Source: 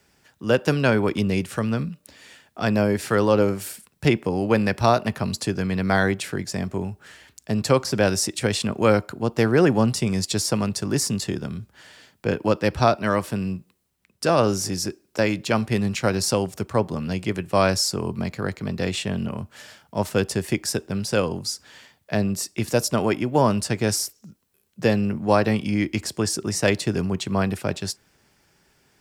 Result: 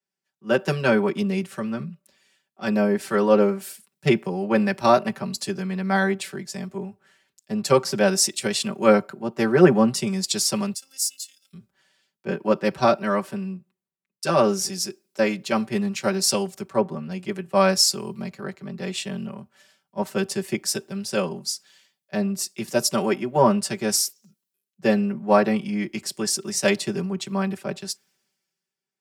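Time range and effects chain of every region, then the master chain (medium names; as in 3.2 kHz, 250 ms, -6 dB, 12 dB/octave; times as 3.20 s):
10.74–11.53 s: high-pass 49 Hz + differentiator + robot voice 265 Hz
whole clip: high-pass 140 Hz 12 dB/octave; comb 5.2 ms, depth 90%; three bands expanded up and down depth 70%; trim -4 dB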